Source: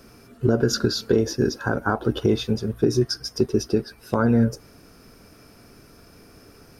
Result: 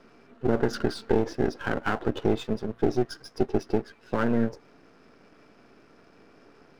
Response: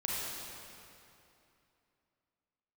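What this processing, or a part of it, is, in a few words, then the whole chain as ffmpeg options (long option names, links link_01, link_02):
crystal radio: -af "highpass=210,lowpass=2900,aeval=exprs='if(lt(val(0),0),0.251*val(0),val(0))':channel_layout=same"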